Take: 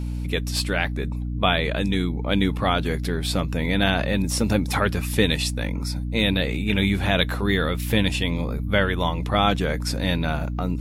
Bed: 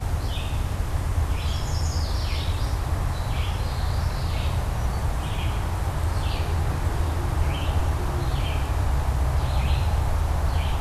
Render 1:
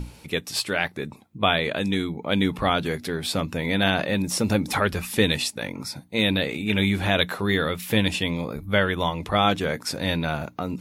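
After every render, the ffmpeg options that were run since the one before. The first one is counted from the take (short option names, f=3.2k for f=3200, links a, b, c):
-af "bandreject=f=60:t=h:w=6,bandreject=f=120:t=h:w=6,bandreject=f=180:t=h:w=6,bandreject=f=240:t=h:w=6,bandreject=f=300:t=h:w=6"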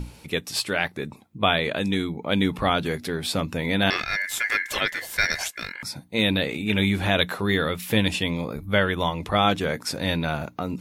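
-filter_complex "[0:a]asettb=1/sr,asplit=3[a][b][c];[a]atrim=end=3.904[d];[b]atrim=start=3.9:end=5.83,asetpts=PTS-STARTPTS,afade=t=in:d=0.004:c=qsin,afade=t=out:st=1.926:d=0.004:c=qsin,aeval=exprs='val(0)*sin(2*PI*1900*n/s)':c=same[e];[c]atrim=start=5.826[f];[d][e]acrossfade=d=0.004:c1=hsin:c2=qsin[g];[g][f]acrossfade=d=0.004:c1=qsin:c2=hsin"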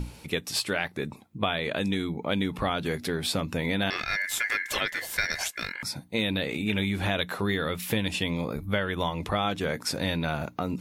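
-af "acompressor=threshold=-24dB:ratio=4"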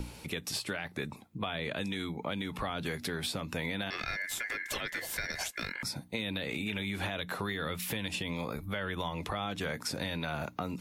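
-filter_complex "[0:a]alimiter=limit=-18dB:level=0:latency=1:release=80,acrossover=split=250|640[a][b][c];[a]acompressor=threshold=-39dB:ratio=4[d];[b]acompressor=threshold=-43dB:ratio=4[e];[c]acompressor=threshold=-34dB:ratio=4[f];[d][e][f]amix=inputs=3:normalize=0"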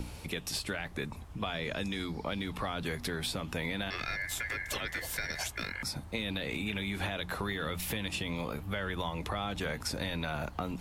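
-filter_complex "[1:a]volume=-24dB[a];[0:a][a]amix=inputs=2:normalize=0"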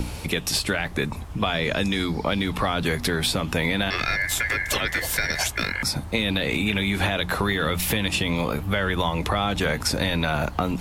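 -af "volume=11.5dB"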